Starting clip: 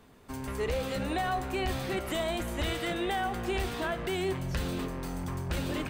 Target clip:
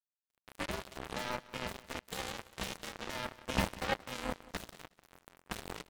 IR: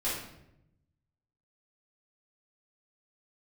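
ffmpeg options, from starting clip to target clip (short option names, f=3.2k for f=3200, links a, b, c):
-filter_complex "[0:a]asettb=1/sr,asplit=3[a][b][c];[a]atrim=end=3.534[d];[b]atrim=start=3.53:end=4.05,asetpts=PTS-STARTPTS,afade=t=in:d=0.004:c=qsin,afade=t=out:st=0.516:d=0.004:c=qsin,aecho=1:1:1.6:0.68,atrim=end_sample=22932[e];[c]atrim=start=4.046[f];[d][e]acrossfade=d=0.004:c1=hsin:c2=qsin[g];[g][f]acrossfade=d=0.004:c1=qsin:c2=hsin,acrusher=bits=3:mix=0:aa=0.5,aeval=exprs='val(0)*sin(2*PI*130*n/s)':c=same,aecho=1:1:183|366:0.106|0.0222,adynamicequalizer=threshold=0.00251:dfrequency=1900:dqfactor=0.7:tfrequency=1900:tqfactor=0.7:attack=5:release=100:ratio=0.375:range=2:mode=cutabove:tftype=highshelf,volume=2.5dB"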